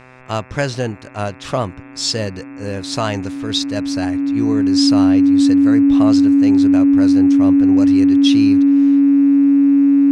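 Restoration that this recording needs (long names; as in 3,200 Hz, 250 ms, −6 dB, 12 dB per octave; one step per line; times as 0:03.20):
hum removal 127.8 Hz, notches 21
notch filter 280 Hz, Q 30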